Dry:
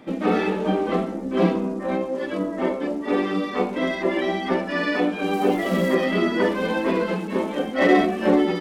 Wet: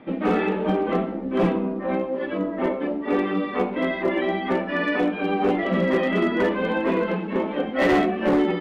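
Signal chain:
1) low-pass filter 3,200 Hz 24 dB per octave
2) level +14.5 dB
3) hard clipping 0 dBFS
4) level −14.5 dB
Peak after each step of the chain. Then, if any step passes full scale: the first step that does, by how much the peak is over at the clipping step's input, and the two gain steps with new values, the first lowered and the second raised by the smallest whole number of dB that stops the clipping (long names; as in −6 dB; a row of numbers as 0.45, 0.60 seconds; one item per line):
−5.0, +9.5, 0.0, −14.5 dBFS
step 2, 9.5 dB
step 2 +4.5 dB, step 4 −4.5 dB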